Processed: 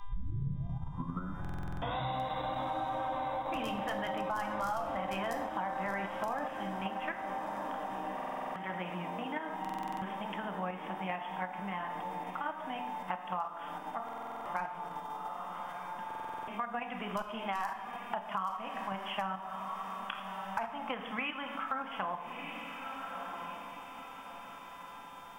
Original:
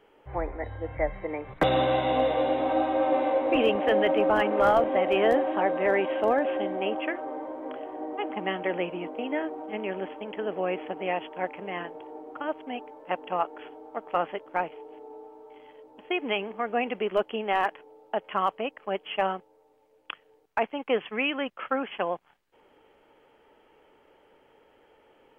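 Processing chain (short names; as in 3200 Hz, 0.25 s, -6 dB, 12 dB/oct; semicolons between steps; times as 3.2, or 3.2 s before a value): tape start at the beginning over 1.99 s; buzz 400 Hz, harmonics 9, -62 dBFS -4 dB/oct; EQ curve 200 Hz 0 dB, 420 Hz -18 dB, 990 Hz +4 dB, 2800 Hz -7 dB, 5200 Hz +14 dB; reverb RT60 0.90 s, pre-delay 6 ms, DRR 4 dB; in parallel at +2 dB: level quantiser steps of 16 dB; on the sum: whine 1000 Hz -51 dBFS; on a send: diffused feedback echo 1.297 s, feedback 43%, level -15 dB; on the sum: compressor 4:1, threshold -35 dBFS, peak gain reduction 17.5 dB; stuck buffer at 1.4/8.14/9.6/14.04/16.06, samples 2048, times 8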